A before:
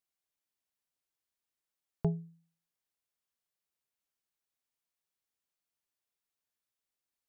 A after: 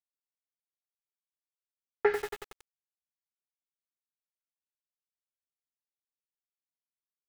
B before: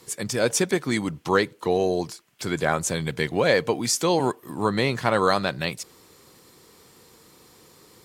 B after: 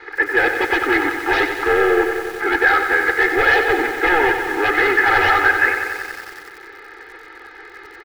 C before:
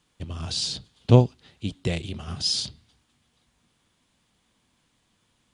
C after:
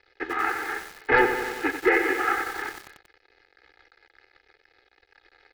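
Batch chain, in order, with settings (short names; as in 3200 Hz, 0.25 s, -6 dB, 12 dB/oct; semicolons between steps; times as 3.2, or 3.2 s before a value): CVSD 16 kbps; HPF 310 Hz 24 dB/oct; fixed phaser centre 1500 Hz, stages 4; sine folder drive 14 dB, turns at -16 dBFS; band shelf 1200 Hz +14.5 dB; crossover distortion -39.5 dBFS; air absorption 260 m; fixed phaser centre 440 Hz, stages 4; comb 2.4 ms, depth 81%; lo-fi delay 92 ms, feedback 80%, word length 6-bit, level -8 dB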